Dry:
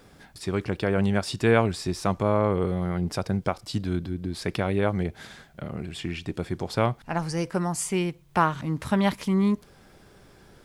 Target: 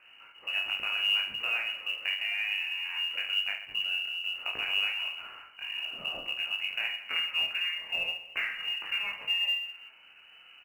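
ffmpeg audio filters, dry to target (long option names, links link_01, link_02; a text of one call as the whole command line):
ffmpeg -i in.wav -af "acompressor=threshold=-25dB:ratio=20,flanger=delay=17.5:depth=6.2:speed=1.1,aecho=1:1:30|72|130.8|213.1|328.4:0.631|0.398|0.251|0.158|0.1,lowpass=frequency=2600:width_type=q:width=0.5098,lowpass=frequency=2600:width_type=q:width=0.6013,lowpass=frequency=2600:width_type=q:width=0.9,lowpass=frequency=2600:width_type=q:width=2.563,afreqshift=-3000,volume=-1dB" -ar 44100 -c:a adpcm_ima_wav out.wav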